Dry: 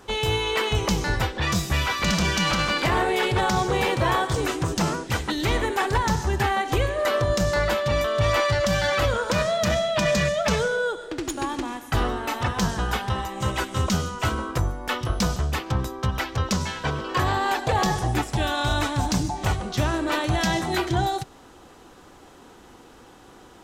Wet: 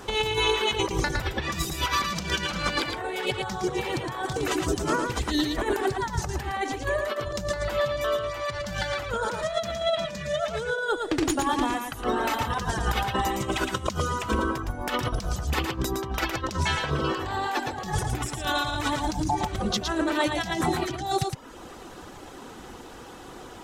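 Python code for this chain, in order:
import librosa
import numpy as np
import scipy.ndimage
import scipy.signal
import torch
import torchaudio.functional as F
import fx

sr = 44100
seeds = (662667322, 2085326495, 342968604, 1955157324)

y = fx.dereverb_blind(x, sr, rt60_s=0.68)
y = fx.over_compress(y, sr, threshold_db=-29.0, ratio=-0.5)
y = y + 10.0 ** (-5.0 / 20.0) * np.pad(y, (int(113 * sr / 1000.0), 0))[:len(y)]
y = F.gain(torch.from_numpy(y), 1.5).numpy()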